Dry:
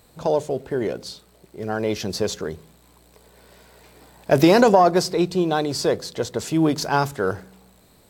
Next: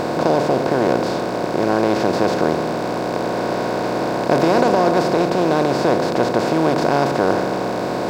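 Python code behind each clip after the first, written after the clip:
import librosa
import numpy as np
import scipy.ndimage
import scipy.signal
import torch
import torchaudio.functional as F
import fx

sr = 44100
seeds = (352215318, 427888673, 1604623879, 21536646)

y = fx.bin_compress(x, sr, power=0.2)
y = fx.high_shelf(y, sr, hz=4600.0, db=-9.5)
y = y * 10.0 ** (-6.5 / 20.0)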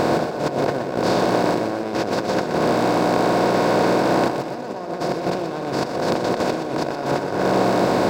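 y = fx.over_compress(x, sr, threshold_db=-21.0, ratio=-0.5)
y = fx.echo_feedback(y, sr, ms=123, feedback_pct=47, wet_db=-8.0)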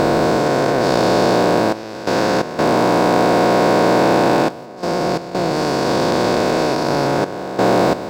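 y = fx.spec_dilate(x, sr, span_ms=480)
y = fx.step_gate(y, sr, bpm=87, pattern='xxxxxxxxxx..xx.x', floor_db=-12.0, edge_ms=4.5)
y = y * 10.0 ** (-1.0 / 20.0)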